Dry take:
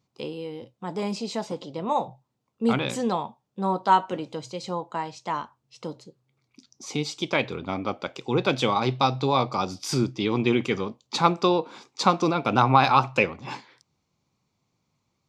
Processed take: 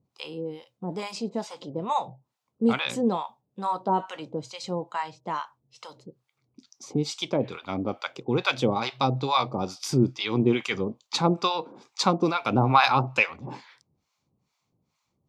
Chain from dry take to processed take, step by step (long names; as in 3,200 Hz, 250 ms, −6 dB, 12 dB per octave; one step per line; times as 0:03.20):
two-band tremolo in antiphase 2.3 Hz, depth 100%, crossover 740 Hz
level +3.5 dB